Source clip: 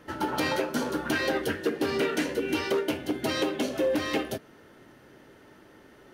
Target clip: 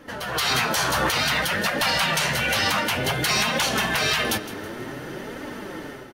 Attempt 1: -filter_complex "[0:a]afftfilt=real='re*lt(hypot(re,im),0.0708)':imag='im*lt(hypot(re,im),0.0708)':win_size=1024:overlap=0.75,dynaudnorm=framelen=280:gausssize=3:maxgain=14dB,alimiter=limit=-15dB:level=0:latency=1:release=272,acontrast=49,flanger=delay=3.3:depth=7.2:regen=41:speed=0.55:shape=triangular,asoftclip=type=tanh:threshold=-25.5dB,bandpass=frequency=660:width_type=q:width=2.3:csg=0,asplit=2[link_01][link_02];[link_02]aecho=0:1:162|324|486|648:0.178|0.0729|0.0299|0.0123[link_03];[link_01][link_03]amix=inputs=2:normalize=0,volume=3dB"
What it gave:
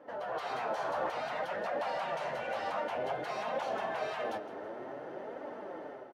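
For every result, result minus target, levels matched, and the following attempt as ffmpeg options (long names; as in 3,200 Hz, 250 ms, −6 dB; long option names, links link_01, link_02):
500 Hz band +10.0 dB; soft clipping: distortion +13 dB
-filter_complex "[0:a]afftfilt=real='re*lt(hypot(re,im),0.0708)':imag='im*lt(hypot(re,im),0.0708)':win_size=1024:overlap=0.75,dynaudnorm=framelen=280:gausssize=3:maxgain=14dB,alimiter=limit=-15dB:level=0:latency=1:release=272,acontrast=49,flanger=delay=3.3:depth=7.2:regen=41:speed=0.55:shape=triangular,asoftclip=type=tanh:threshold=-25.5dB,asplit=2[link_01][link_02];[link_02]aecho=0:1:162|324|486|648:0.178|0.0729|0.0299|0.0123[link_03];[link_01][link_03]amix=inputs=2:normalize=0,volume=3dB"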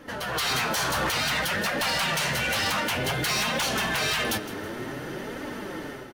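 soft clipping: distortion +13 dB
-filter_complex "[0:a]afftfilt=real='re*lt(hypot(re,im),0.0708)':imag='im*lt(hypot(re,im),0.0708)':win_size=1024:overlap=0.75,dynaudnorm=framelen=280:gausssize=3:maxgain=14dB,alimiter=limit=-15dB:level=0:latency=1:release=272,acontrast=49,flanger=delay=3.3:depth=7.2:regen=41:speed=0.55:shape=triangular,asoftclip=type=tanh:threshold=-15dB,asplit=2[link_01][link_02];[link_02]aecho=0:1:162|324|486|648:0.178|0.0729|0.0299|0.0123[link_03];[link_01][link_03]amix=inputs=2:normalize=0,volume=3dB"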